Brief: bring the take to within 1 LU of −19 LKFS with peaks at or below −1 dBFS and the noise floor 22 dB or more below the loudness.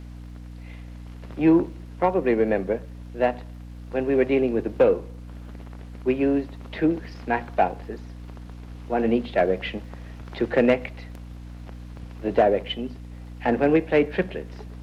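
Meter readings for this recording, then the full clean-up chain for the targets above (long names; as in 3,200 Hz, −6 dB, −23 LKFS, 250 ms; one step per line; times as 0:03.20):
crackle rate 50 per second; mains hum 60 Hz; hum harmonics up to 300 Hz; level of the hum −37 dBFS; integrated loudness −23.5 LKFS; sample peak −8.5 dBFS; target loudness −19.0 LKFS
→ click removal
mains-hum notches 60/120/180/240/300 Hz
level +4.5 dB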